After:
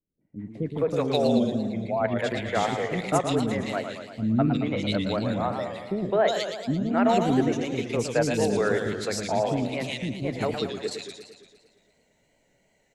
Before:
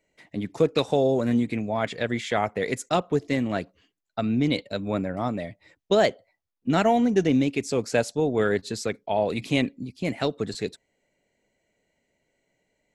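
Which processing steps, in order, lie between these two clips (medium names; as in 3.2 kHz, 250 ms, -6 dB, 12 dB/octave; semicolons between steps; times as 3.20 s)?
1.16–1.83 s: spectral contrast enhancement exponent 1.6; level rider gain up to 15.5 dB; three bands offset in time lows, mids, highs 210/360 ms, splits 350/2200 Hz; modulated delay 114 ms, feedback 61%, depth 156 cents, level -7.5 dB; trim -8.5 dB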